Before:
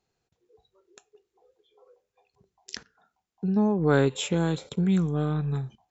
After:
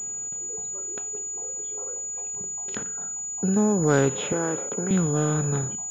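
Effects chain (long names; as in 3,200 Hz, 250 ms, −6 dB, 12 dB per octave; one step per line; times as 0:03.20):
compressor on every frequency bin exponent 0.6
0:04.32–0:04.91: three-way crossover with the lows and the highs turned down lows −21 dB, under 230 Hz, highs −23 dB, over 2,500 Hz
switching amplifier with a slow clock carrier 6,900 Hz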